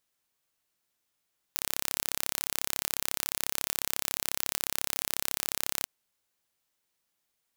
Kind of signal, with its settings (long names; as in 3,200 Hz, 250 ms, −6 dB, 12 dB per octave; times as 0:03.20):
impulse train 34.1 per second, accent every 0, −2.5 dBFS 4.29 s